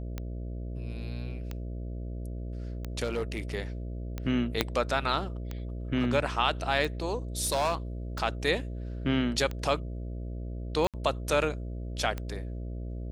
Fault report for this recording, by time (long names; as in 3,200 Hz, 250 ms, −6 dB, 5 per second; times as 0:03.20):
mains buzz 60 Hz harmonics 11 −36 dBFS
scratch tick 45 rpm −21 dBFS
0:03.03–0:03.40: clipping −25 dBFS
0:04.61: click −8 dBFS
0:07.40–0:07.75: clipping −22.5 dBFS
0:10.87–0:10.94: drop-out 67 ms